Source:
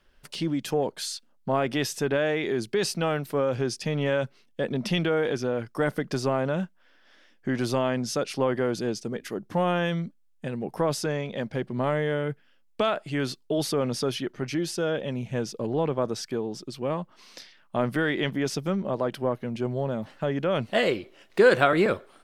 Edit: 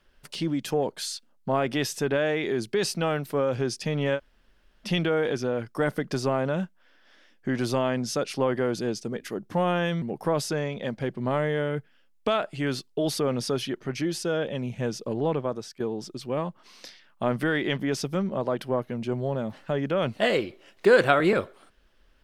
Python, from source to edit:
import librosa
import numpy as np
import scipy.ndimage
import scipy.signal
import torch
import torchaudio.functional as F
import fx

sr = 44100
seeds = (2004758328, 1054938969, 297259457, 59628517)

y = fx.edit(x, sr, fx.room_tone_fill(start_s=4.17, length_s=0.69, crossfade_s=0.06),
    fx.cut(start_s=10.02, length_s=0.53),
    fx.fade_out_to(start_s=15.84, length_s=0.49, floor_db=-12.5), tone=tone)